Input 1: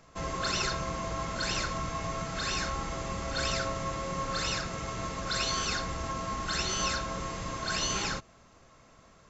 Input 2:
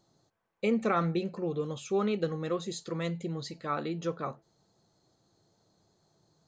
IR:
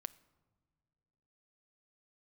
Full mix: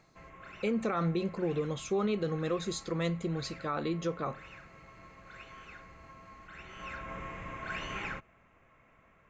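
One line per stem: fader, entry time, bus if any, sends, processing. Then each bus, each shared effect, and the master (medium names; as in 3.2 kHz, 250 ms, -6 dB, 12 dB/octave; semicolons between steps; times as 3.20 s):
-8.5 dB, 0.00 s, send -10 dB, resonant high shelf 3.3 kHz -12.5 dB, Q 3; auto duck -21 dB, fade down 0.25 s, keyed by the second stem
+1.5 dB, 0.00 s, no send, none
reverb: on, pre-delay 6 ms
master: peak limiter -23 dBFS, peak gain reduction 8.5 dB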